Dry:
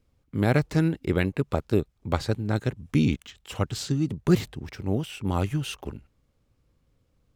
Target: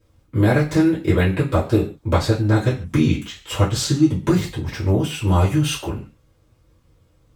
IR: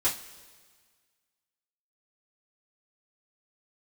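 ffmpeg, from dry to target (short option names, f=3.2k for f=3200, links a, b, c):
-filter_complex "[0:a]acompressor=threshold=-23dB:ratio=6[a];[1:a]atrim=start_sample=2205,afade=t=out:st=0.21:d=0.01,atrim=end_sample=9702[b];[a][b]afir=irnorm=-1:irlink=0,volume=2.5dB"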